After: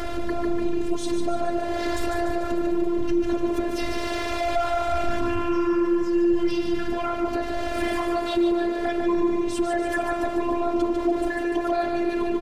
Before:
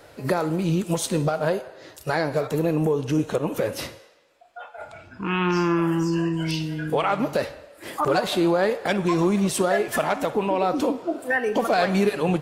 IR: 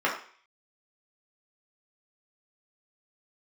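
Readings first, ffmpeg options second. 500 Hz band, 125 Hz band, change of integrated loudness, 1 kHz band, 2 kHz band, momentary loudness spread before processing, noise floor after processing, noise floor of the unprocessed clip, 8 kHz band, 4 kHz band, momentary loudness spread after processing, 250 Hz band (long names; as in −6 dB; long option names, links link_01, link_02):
−1.0 dB, −12.5 dB, −1.5 dB, −1.0 dB, −3.5 dB, 13 LU, −28 dBFS, −50 dBFS, −7.0 dB, −3.0 dB, 5 LU, +1.0 dB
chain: -filter_complex "[0:a]aeval=exprs='val(0)+0.5*0.0447*sgn(val(0))':channel_layout=same,acompressor=threshold=-31dB:ratio=6,aemphasis=mode=reproduction:type=bsi,asplit=2[link_01][link_02];[link_02]aecho=0:1:147|294|441|588|735|882|1029:0.531|0.292|0.161|0.0883|0.0486|0.0267|0.0147[link_03];[link_01][link_03]amix=inputs=2:normalize=0,afftfilt=real='hypot(re,im)*cos(PI*b)':imag='0':win_size=512:overlap=0.75,asoftclip=type=tanh:threshold=-20dB,dynaudnorm=framelen=160:gausssize=5:maxgain=4dB,volume=5.5dB"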